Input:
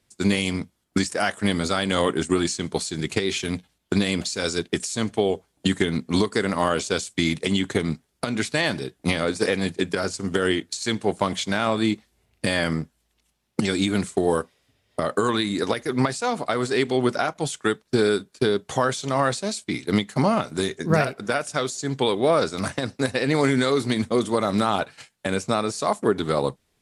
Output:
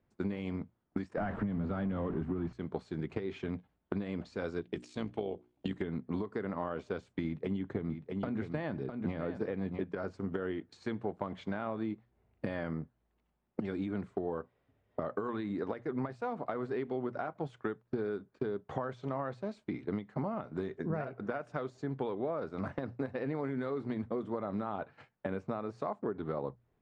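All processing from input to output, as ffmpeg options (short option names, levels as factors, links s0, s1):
-filter_complex "[0:a]asettb=1/sr,asplit=3[s0][s1][s2];[s0]atrim=end=1.174[s3];[s1]atrim=start=1.17:end=2.53,asetpts=PTS-STARTPTS,afade=t=in:d=0.004:c=qsin,afade=t=out:st=1.356:d=0.004:c=qsin,aeval=exprs='val(0)+0.5*0.0794*sgn(val(0))':c=same,bass=f=250:g=14,treble=f=4000:g=-11,acrossover=split=120|5800[s4][s5][s6];[s4]acompressor=threshold=0.0398:ratio=4[s7];[s5]acompressor=threshold=0.2:ratio=4[s8];[s6]acompressor=threshold=0.00708:ratio=4[s9];[s7][s8][s9]amix=inputs=3:normalize=0[s10];[s2]atrim=start=2.526[s11];[s3][s10]acrossfade=d=0.004:c1=hsin:c2=qsin[s12];[s12][s11]acrossfade=d=0.004:c1=qsin:c2=hsin,asettb=1/sr,asplit=3[s13][s14][s15];[s13]atrim=end=4.614[s16];[s14]atrim=start=4.61:end=5.82,asetpts=PTS-STARTPTS,afade=t=in:d=0.004:c=qsin,afade=t=out:st=1.206:d=0.004:c=qsin,highshelf=f=2100:t=q:w=1.5:g=6,bandreject=f=60:t=h:w=6,bandreject=f=120:t=h:w=6,bandreject=f=180:t=h:w=6,bandreject=f=240:t=h:w=6,bandreject=f=300:t=h:w=6,bandreject=f=360:t=h:w=6,tremolo=f=60:d=0.571[s17];[s15]atrim=start=5.816[s18];[s16][s17]acrossfade=d=0.004:c1=hsin:c2=qsin[s19];[s19][s18]acrossfade=d=0.004:c1=qsin:c2=hsin,asettb=1/sr,asplit=3[s20][s21][s22];[s20]atrim=end=7.244[s23];[s21]atrim=start=7.24:end=9.84,asetpts=PTS-STARTPTS,afade=t=in:d=0.004:c=qsin,afade=t=out:st=2.596:d=0.004:c=qsin,lowshelf=f=370:g=5,aecho=1:1:655:0.316,atrim=end_sample=114660[s24];[s22]atrim=start=9.836[s25];[s23][s24]acrossfade=d=0.004:c1=hsin:c2=qsin[s26];[s26][s25]acrossfade=d=0.004:c1=qsin:c2=hsin,lowpass=1300,bandreject=f=60:t=h:w=6,bandreject=f=120:t=h:w=6,acompressor=threshold=0.0355:ratio=5,volume=0.631"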